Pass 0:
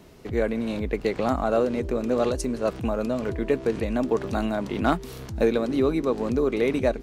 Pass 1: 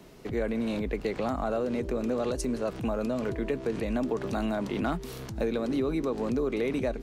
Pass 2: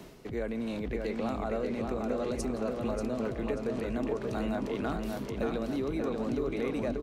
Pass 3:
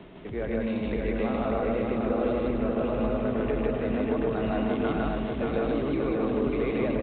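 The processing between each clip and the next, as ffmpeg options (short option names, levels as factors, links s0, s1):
-filter_complex "[0:a]acrossover=split=180[s0][s1];[s1]acompressor=threshold=0.0794:ratio=6[s2];[s0][s2]amix=inputs=2:normalize=0,equalizer=f=80:t=o:w=0.34:g=-13.5,asplit=2[s3][s4];[s4]alimiter=limit=0.0708:level=0:latency=1:release=23,volume=1.19[s5];[s3][s5]amix=inputs=2:normalize=0,volume=0.422"
-filter_complex "[0:a]asplit=2[s0][s1];[s1]adelay=586,lowpass=f=4600:p=1,volume=0.668,asplit=2[s2][s3];[s3]adelay=586,lowpass=f=4600:p=1,volume=0.52,asplit=2[s4][s5];[s5]adelay=586,lowpass=f=4600:p=1,volume=0.52,asplit=2[s6][s7];[s7]adelay=586,lowpass=f=4600:p=1,volume=0.52,asplit=2[s8][s9];[s9]adelay=586,lowpass=f=4600:p=1,volume=0.52,asplit=2[s10][s11];[s11]adelay=586,lowpass=f=4600:p=1,volume=0.52,asplit=2[s12][s13];[s13]adelay=586,lowpass=f=4600:p=1,volume=0.52[s14];[s0][s2][s4][s6][s8][s10][s12][s14]amix=inputs=8:normalize=0,areverse,acompressor=mode=upward:threshold=0.0316:ratio=2.5,areverse,volume=0.596"
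-filter_complex "[0:a]asplit=2[s0][s1];[s1]aecho=0:1:90.38|154.5:0.251|1[s2];[s0][s2]amix=inputs=2:normalize=0,aresample=8000,aresample=44100,asplit=2[s3][s4];[s4]aecho=0:1:106:0.447[s5];[s3][s5]amix=inputs=2:normalize=0,volume=1.19"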